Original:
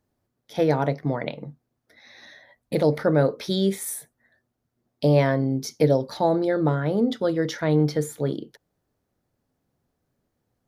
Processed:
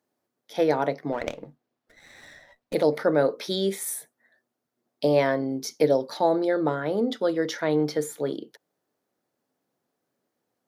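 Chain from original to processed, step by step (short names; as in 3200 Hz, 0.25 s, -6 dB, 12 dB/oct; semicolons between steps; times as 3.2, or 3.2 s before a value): HPF 280 Hz 12 dB/oct; 1.12–2.74 running maximum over 5 samples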